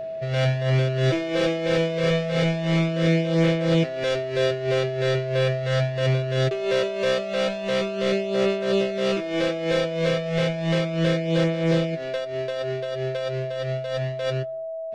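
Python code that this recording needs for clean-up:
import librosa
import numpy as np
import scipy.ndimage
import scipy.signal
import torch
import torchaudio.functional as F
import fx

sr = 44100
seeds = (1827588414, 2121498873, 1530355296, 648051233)

y = fx.notch(x, sr, hz=650.0, q=30.0)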